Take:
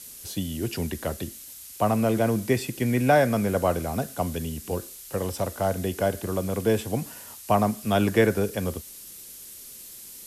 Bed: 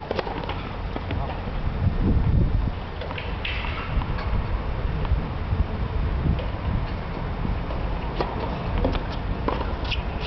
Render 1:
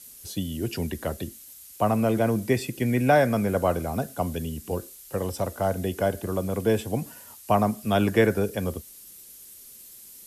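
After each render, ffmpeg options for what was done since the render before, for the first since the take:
ffmpeg -i in.wav -af "afftdn=noise_reduction=6:noise_floor=-44" out.wav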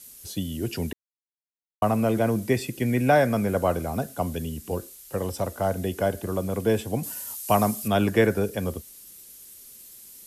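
ffmpeg -i in.wav -filter_complex "[0:a]asettb=1/sr,asplit=3[link_01][link_02][link_03];[link_01]atrim=end=7.034[link_04];[link_02]atrim=start=7.03:end=7.88,asetpts=PTS-STARTPTS,afade=type=in:duration=0.004:curve=qsin,afade=type=out:start_time=0.846:duration=0.004:curve=qsin,highshelf=frequency=3600:gain=12[link_05];[link_03]atrim=start=7.876[link_06];[link_04][link_05]acrossfade=duration=0.004:curve1=hsin:curve2=qsin[link_07];[link_07][link_06]acrossfade=duration=0.004:curve1=qsin:curve2=hsin,asplit=3[link_08][link_09][link_10];[link_08]atrim=end=0.93,asetpts=PTS-STARTPTS,afade=type=out:start_time=0.926:duration=0.004:curve=hsin[link_11];[link_09]atrim=start=0.93:end=1.82,asetpts=PTS-STARTPTS,volume=0[link_12];[link_10]atrim=start=1.82,asetpts=PTS-STARTPTS,afade=type=in:duration=0.004:curve=hsin[link_13];[link_11][link_12][link_13]concat=n=3:v=0:a=1" out.wav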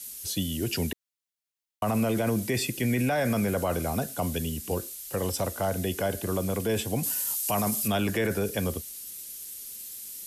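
ffmpeg -i in.wav -filter_complex "[0:a]acrossover=split=800|1900[link_01][link_02][link_03];[link_03]acontrast=53[link_04];[link_01][link_02][link_04]amix=inputs=3:normalize=0,alimiter=limit=-18dB:level=0:latency=1:release=16" out.wav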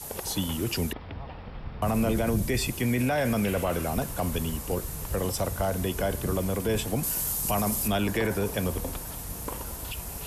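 ffmpeg -i in.wav -i bed.wav -filter_complex "[1:a]volume=-11.5dB[link_01];[0:a][link_01]amix=inputs=2:normalize=0" out.wav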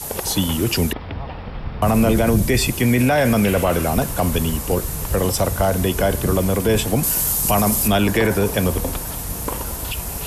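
ffmpeg -i in.wav -af "volume=9.5dB" out.wav

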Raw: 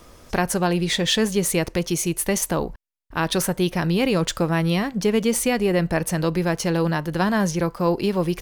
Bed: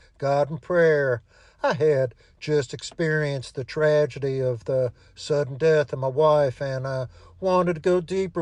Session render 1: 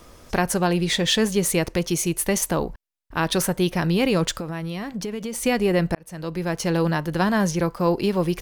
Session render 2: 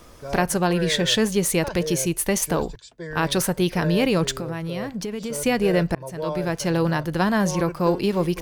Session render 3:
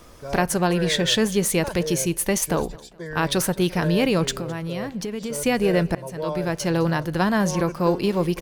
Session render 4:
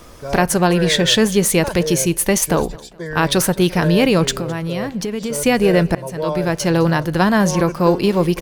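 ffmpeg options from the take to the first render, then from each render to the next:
ffmpeg -i in.wav -filter_complex "[0:a]asplit=3[link_01][link_02][link_03];[link_01]afade=type=out:start_time=4.31:duration=0.02[link_04];[link_02]acompressor=threshold=-26dB:ratio=6:attack=3.2:release=140:knee=1:detection=peak,afade=type=in:start_time=4.31:duration=0.02,afade=type=out:start_time=5.42:duration=0.02[link_05];[link_03]afade=type=in:start_time=5.42:duration=0.02[link_06];[link_04][link_05][link_06]amix=inputs=3:normalize=0,asplit=2[link_07][link_08];[link_07]atrim=end=5.95,asetpts=PTS-STARTPTS,afade=type=out:start_time=5.946:duration=0.004:curve=hsin[link_09];[link_08]atrim=start=5.95,asetpts=PTS-STARTPTS,afade=type=in:duration=0.79[link_10];[link_09][link_10]concat=n=2:v=0:a=1" out.wav
ffmpeg -i in.wav -i bed.wav -filter_complex "[1:a]volume=-11dB[link_01];[0:a][link_01]amix=inputs=2:normalize=0" out.wav
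ffmpeg -i in.wav -af "aecho=1:1:211|422|633:0.0708|0.0276|0.0108" out.wav
ffmpeg -i in.wav -af "volume=6dB,alimiter=limit=-3dB:level=0:latency=1" out.wav

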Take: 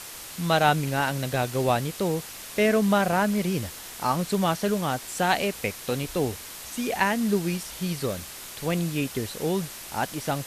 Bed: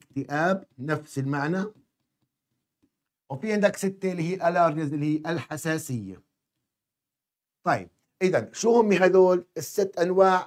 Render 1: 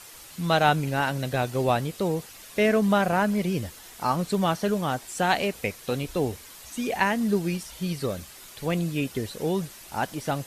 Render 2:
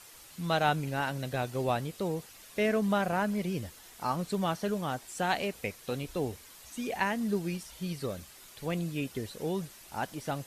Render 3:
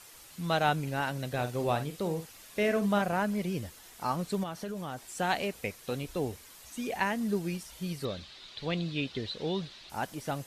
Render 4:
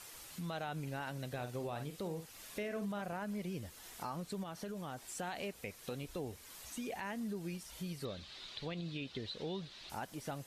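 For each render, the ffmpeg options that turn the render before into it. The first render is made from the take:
ffmpeg -i in.wav -af "afftdn=noise_reduction=8:noise_floor=-41" out.wav
ffmpeg -i in.wav -af "volume=-6.5dB" out.wav
ffmpeg -i in.wav -filter_complex "[0:a]asettb=1/sr,asplit=3[link_01][link_02][link_03];[link_01]atrim=end=1.334[link_04];[link_02]atrim=start=1.33:end=3.02,asetpts=PTS-STARTPTS,afade=type=in:duration=0.004:curve=qsin,afade=type=out:start_time=1.686:duration=0.004:curve=qsin,asplit=2[link_05][link_06];[link_06]adelay=49,volume=-10dB[link_07];[link_05][link_07]amix=inputs=2:normalize=0,atrim=end_sample=74529[link_08];[link_03]atrim=start=3.016[link_09];[link_04][link_08]acrossfade=duration=0.004:curve1=hsin:curve2=qsin[link_10];[link_10][link_09]acrossfade=duration=0.004:curve1=qsin:curve2=hsin,asettb=1/sr,asplit=3[link_11][link_12][link_13];[link_11]atrim=end=4.434[link_14];[link_12]atrim=start=4.43:end=5.03,asetpts=PTS-STARTPTS,afade=type=in:duration=0.004:curve=qsin,afade=type=out:start_time=0.596:duration=0.004:curve=qsin,acompressor=threshold=-33dB:ratio=6:attack=3.2:release=140:knee=1:detection=peak[link_15];[link_13]atrim=start=5.026[link_16];[link_14][link_15]acrossfade=duration=0.004:curve1=hsin:curve2=qsin[link_17];[link_17][link_16]acrossfade=duration=0.004:curve1=qsin:curve2=hsin,asettb=1/sr,asplit=3[link_18][link_19][link_20];[link_18]atrim=end=8.054[link_21];[link_19]atrim=start=8.05:end=9.9,asetpts=PTS-STARTPTS,afade=type=in:duration=0.004:curve=qsin,afade=type=out:start_time=1.846:duration=0.004:curve=qsin,lowpass=frequency=3900:width_type=q:width=3.9[link_22];[link_20]atrim=start=9.896[link_23];[link_21][link_22]acrossfade=duration=0.004:curve1=hsin:curve2=qsin[link_24];[link_24][link_23]acrossfade=duration=0.004:curve1=qsin:curve2=hsin" out.wav
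ffmpeg -i in.wav -af "alimiter=limit=-23.5dB:level=0:latency=1:release=59,acompressor=threshold=-45dB:ratio=2" out.wav

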